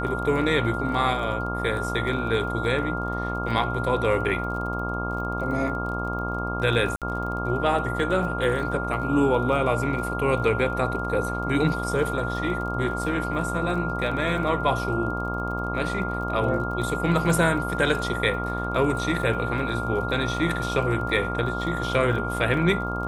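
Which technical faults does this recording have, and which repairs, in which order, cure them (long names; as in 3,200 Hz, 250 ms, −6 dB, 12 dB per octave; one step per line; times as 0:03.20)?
mains buzz 60 Hz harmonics 23 −30 dBFS
surface crackle 28 per second −34 dBFS
whistle 1,400 Hz −30 dBFS
0:06.96–0:07.02: drop-out 57 ms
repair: click removal
notch filter 1,400 Hz, Q 30
hum removal 60 Hz, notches 23
repair the gap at 0:06.96, 57 ms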